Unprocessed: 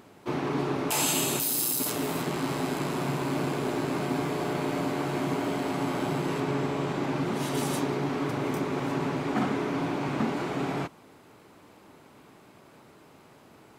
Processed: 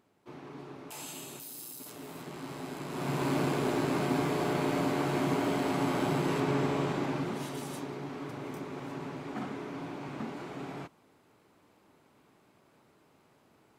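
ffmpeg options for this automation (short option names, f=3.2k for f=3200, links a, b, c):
-af "volume=-0.5dB,afade=t=in:st=1.84:d=1.04:silence=0.421697,afade=t=in:st=2.88:d=0.37:silence=0.354813,afade=t=out:st=6.76:d=0.84:silence=0.316228"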